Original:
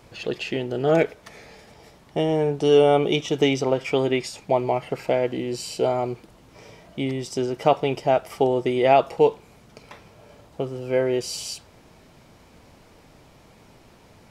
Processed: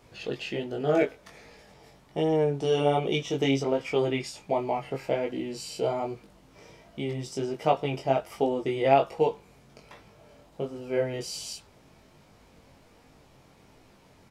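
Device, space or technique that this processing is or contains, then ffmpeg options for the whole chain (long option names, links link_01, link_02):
double-tracked vocal: -filter_complex "[0:a]asplit=2[link_01][link_02];[link_02]adelay=15,volume=-11.5dB[link_03];[link_01][link_03]amix=inputs=2:normalize=0,flanger=delay=19:depth=3.4:speed=1.3,volume=-2.5dB"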